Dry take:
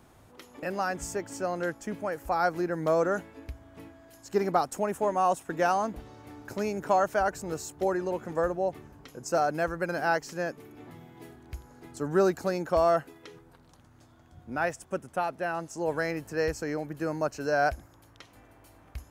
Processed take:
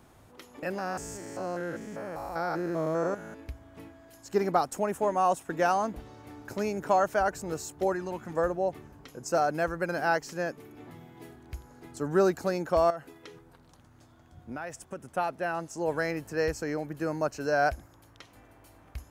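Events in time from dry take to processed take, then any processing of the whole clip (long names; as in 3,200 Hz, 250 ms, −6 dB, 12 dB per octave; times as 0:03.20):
0:00.78–0:03.40: spectrum averaged block by block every 200 ms
0:07.92–0:08.34: parametric band 480 Hz −10 dB 0.72 octaves
0:12.90–0:15.08: downward compressor, threshold −33 dBFS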